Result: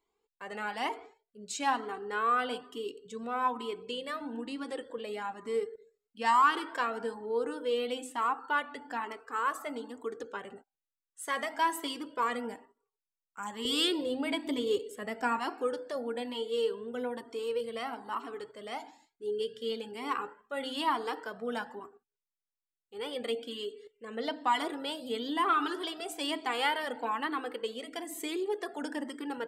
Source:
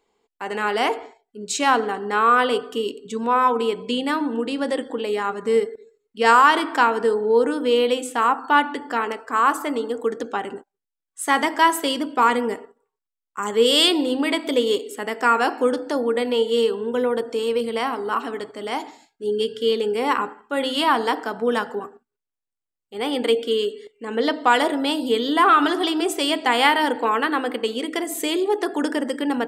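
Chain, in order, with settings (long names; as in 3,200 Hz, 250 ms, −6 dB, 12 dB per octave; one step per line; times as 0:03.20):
0:13.65–0:15.39: low-shelf EQ 260 Hz +10.5 dB
flanger whose copies keep moving one way rising 1.1 Hz
level −8 dB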